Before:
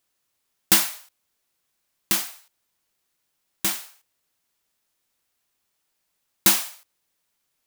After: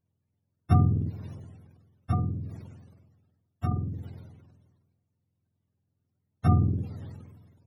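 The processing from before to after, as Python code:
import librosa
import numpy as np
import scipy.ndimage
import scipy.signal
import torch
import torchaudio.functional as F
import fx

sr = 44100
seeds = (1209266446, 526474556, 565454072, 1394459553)

y = fx.octave_mirror(x, sr, pivot_hz=490.0)
y = fx.sustainer(y, sr, db_per_s=39.0)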